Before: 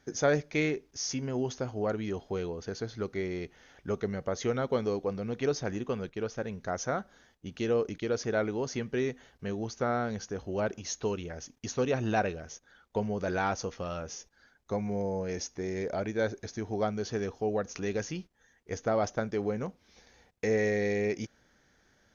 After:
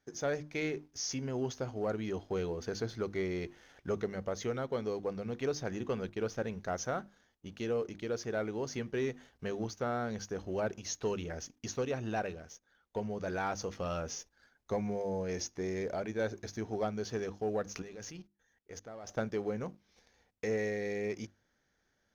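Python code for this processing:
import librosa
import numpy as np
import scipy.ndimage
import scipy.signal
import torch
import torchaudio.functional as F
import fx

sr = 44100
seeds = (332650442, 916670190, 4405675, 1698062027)

y = fx.level_steps(x, sr, step_db=23, at=(17.82, 19.09))
y = fx.hum_notches(y, sr, base_hz=50, count=7)
y = fx.rider(y, sr, range_db=4, speed_s=0.5)
y = fx.leveller(y, sr, passes=1)
y = y * librosa.db_to_amplitude(-7.0)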